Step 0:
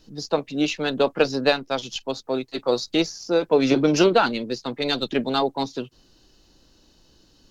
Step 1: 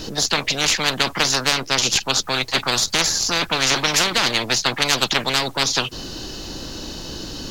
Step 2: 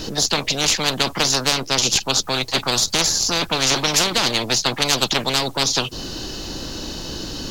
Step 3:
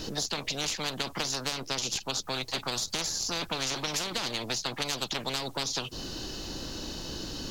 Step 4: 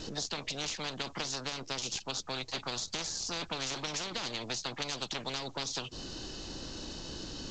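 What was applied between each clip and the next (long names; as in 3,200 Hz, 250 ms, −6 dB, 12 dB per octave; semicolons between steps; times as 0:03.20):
every bin compressed towards the loudest bin 10 to 1; level +3 dB
dynamic equaliser 1,800 Hz, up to −6 dB, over −34 dBFS, Q 0.97; level +2 dB
downward compressor, threshold −20 dBFS, peak gain reduction 8 dB; level −8 dB
level −4.5 dB; G.722 64 kbit/s 16,000 Hz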